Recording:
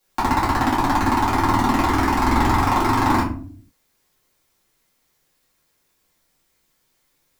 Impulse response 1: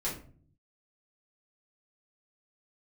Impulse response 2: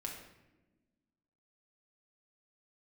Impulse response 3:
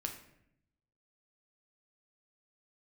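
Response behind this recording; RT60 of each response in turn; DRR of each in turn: 1; 0.45 s, non-exponential decay, 0.75 s; −8.5, −1.0, 2.5 decibels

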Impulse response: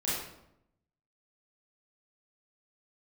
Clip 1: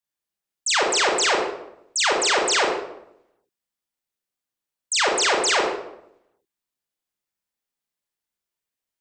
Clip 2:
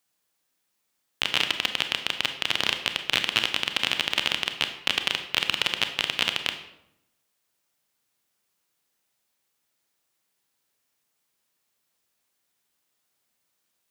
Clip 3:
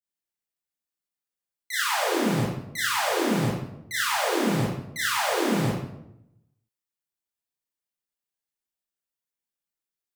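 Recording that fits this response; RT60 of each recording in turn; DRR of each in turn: 3; 0.80, 0.80, 0.80 seconds; −1.5, 7.0, −9.0 decibels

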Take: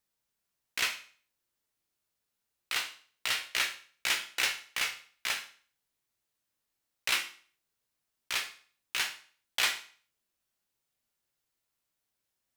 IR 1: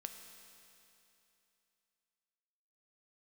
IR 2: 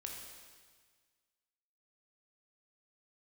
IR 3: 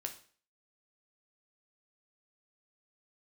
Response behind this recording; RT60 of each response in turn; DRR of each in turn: 3; 2.9, 1.6, 0.45 seconds; 5.0, 0.0, 4.0 decibels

